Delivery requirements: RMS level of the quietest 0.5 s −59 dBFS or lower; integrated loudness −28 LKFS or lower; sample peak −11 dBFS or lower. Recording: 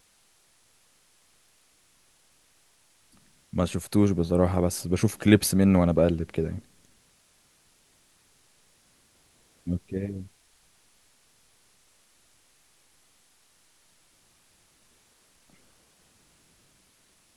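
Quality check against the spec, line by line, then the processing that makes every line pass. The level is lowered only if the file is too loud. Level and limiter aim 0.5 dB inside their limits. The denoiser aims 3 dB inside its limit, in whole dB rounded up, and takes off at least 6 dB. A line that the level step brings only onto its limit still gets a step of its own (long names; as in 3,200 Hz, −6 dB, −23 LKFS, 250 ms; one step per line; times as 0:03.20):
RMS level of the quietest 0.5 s −63 dBFS: in spec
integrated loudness −24.5 LKFS: out of spec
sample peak −3.5 dBFS: out of spec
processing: level −4 dB
brickwall limiter −11.5 dBFS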